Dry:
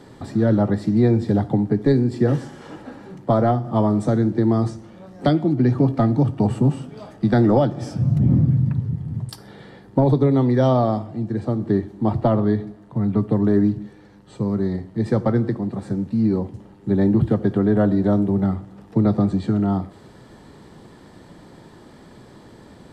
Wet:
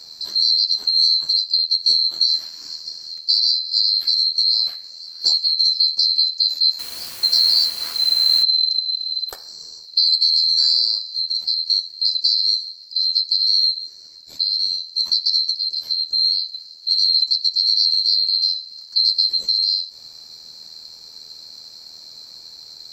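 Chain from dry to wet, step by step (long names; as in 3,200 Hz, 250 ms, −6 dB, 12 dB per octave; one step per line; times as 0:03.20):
neighbouring bands swapped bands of 4,000 Hz
in parallel at +2.5 dB: downward compressor 6 to 1, threshold −29 dBFS, peak gain reduction 16 dB
on the sum: amplitude modulation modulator 80 Hz, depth 35%
0:06.79–0:08.43: bit-depth reduction 6 bits, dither triangular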